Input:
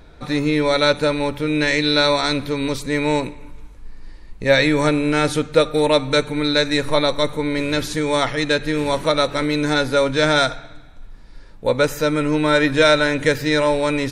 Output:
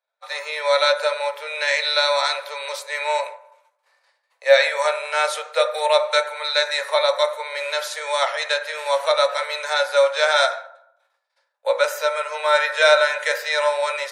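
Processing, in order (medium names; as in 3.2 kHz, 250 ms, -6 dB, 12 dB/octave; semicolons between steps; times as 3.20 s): expander -26 dBFS; steep high-pass 520 Hz 72 dB/octave; reverberation RT60 0.70 s, pre-delay 4 ms, DRR 5 dB; trim -1 dB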